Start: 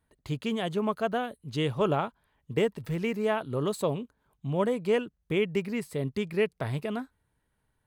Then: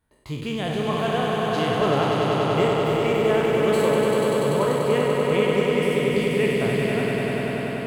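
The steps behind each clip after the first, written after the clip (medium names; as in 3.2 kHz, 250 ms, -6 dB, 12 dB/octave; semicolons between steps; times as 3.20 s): spectral sustain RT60 0.94 s; echo with a slow build-up 97 ms, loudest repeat 5, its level -5 dB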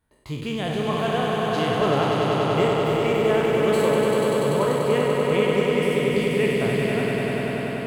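no audible change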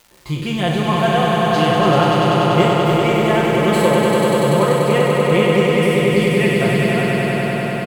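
comb 5.7 ms, depth 85%; crackle 550 per s -42 dBFS; trim +5 dB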